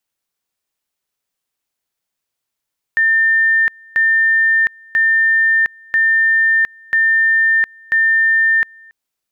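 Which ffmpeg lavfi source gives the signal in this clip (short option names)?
-f lavfi -i "aevalsrc='pow(10,(-10-29*gte(mod(t,0.99),0.71))/20)*sin(2*PI*1800*t)':d=5.94:s=44100"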